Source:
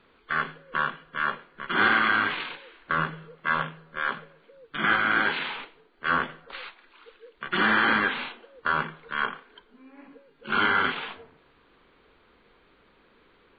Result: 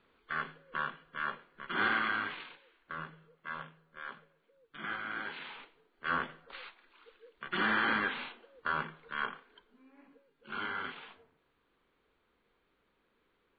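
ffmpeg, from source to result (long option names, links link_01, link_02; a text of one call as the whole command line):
ffmpeg -i in.wav -af "volume=-1dB,afade=type=out:start_time=1.97:duration=0.64:silence=0.446684,afade=type=in:start_time=5.29:duration=0.85:silence=0.398107,afade=type=out:start_time=9.35:duration=1.19:silence=0.446684" out.wav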